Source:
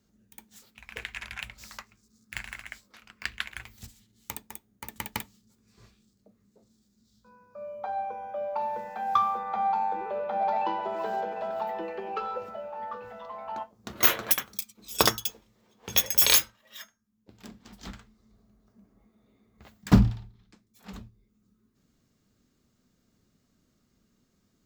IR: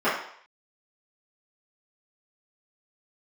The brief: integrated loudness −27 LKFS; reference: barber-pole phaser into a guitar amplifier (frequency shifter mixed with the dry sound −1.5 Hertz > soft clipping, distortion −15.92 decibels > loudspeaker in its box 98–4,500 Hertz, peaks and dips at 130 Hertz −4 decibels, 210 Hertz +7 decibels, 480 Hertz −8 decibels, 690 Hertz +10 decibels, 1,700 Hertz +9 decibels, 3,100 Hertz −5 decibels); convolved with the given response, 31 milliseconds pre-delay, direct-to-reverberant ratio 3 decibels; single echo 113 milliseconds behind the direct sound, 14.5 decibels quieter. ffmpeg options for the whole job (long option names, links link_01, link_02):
-filter_complex "[0:a]aecho=1:1:113:0.188,asplit=2[link_01][link_02];[1:a]atrim=start_sample=2205,adelay=31[link_03];[link_02][link_03]afir=irnorm=-1:irlink=0,volume=-20.5dB[link_04];[link_01][link_04]amix=inputs=2:normalize=0,asplit=2[link_05][link_06];[link_06]afreqshift=-1.5[link_07];[link_05][link_07]amix=inputs=2:normalize=1,asoftclip=threshold=-16dB,highpass=98,equalizer=frequency=130:width_type=q:width=4:gain=-4,equalizer=frequency=210:width_type=q:width=4:gain=7,equalizer=frequency=480:width_type=q:width=4:gain=-8,equalizer=frequency=690:width_type=q:width=4:gain=10,equalizer=frequency=1700:width_type=q:width=4:gain=9,equalizer=frequency=3100:width_type=q:width=4:gain=-5,lowpass=frequency=4500:width=0.5412,lowpass=frequency=4500:width=1.3066,volume=3dB"